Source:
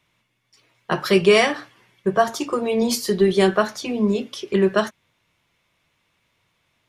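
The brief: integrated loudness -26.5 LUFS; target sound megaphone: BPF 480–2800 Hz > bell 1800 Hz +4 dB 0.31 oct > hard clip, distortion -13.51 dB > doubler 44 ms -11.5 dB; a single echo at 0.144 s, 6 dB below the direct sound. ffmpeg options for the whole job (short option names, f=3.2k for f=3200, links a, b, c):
-filter_complex "[0:a]highpass=480,lowpass=2.8k,equalizer=f=1.8k:t=o:w=0.31:g=4,aecho=1:1:144:0.501,asoftclip=type=hard:threshold=-14dB,asplit=2[a][b];[b]adelay=44,volume=-11.5dB[c];[a][c]amix=inputs=2:normalize=0,volume=-3dB"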